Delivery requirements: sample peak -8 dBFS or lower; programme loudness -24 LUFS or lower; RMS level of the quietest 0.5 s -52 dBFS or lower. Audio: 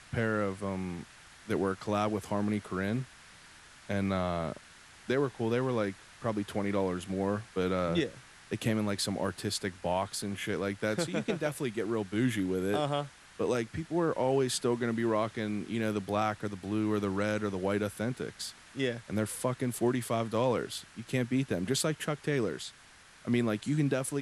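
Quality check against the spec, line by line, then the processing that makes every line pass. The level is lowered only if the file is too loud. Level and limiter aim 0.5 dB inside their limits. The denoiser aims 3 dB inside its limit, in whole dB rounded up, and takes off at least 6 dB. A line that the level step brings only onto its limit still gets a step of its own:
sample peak -18.0 dBFS: pass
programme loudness -32.5 LUFS: pass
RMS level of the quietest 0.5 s -56 dBFS: pass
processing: none needed

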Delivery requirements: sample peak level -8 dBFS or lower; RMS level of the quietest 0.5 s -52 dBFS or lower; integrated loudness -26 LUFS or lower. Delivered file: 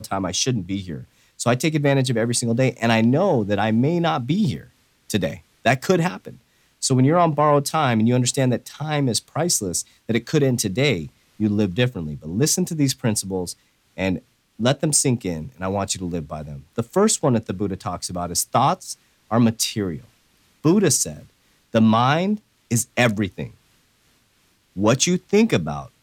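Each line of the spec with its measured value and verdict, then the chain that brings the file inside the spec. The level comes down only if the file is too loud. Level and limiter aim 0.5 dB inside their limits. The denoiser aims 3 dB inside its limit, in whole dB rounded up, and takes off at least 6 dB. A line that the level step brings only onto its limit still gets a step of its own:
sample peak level -5.5 dBFS: fail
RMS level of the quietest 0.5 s -62 dBFS: pass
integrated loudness -21.0 LUFS: fail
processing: trim -5.5 dB

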